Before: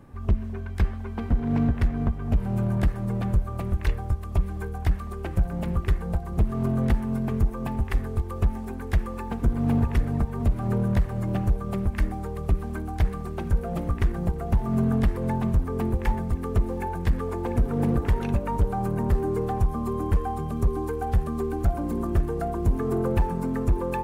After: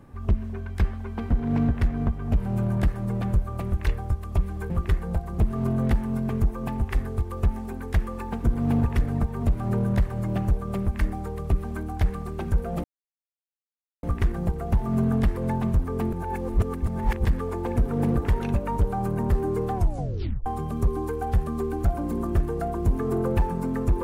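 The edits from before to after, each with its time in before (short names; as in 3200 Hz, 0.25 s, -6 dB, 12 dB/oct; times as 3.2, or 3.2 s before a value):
4.7–5.69 cut
13.83 insert silence 1.19 s
15.93–17.05 reverse
19.55 tape stop 0.71 s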